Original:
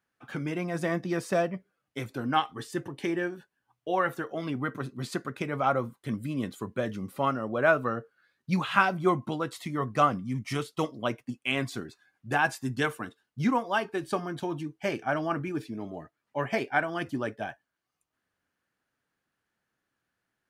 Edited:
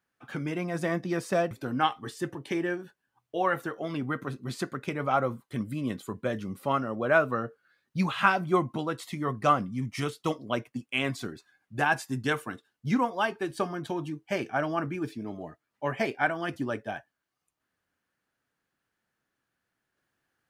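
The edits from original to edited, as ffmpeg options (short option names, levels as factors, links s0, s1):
-filter_complex "[0:a]asplit=2[s0][s1];[s0]atrim=end=1.512[s2];[s1]atrim=start=2.038[s3];[s2][s3]acrossfade=d=0.004:c1=hsin:c2=hsin"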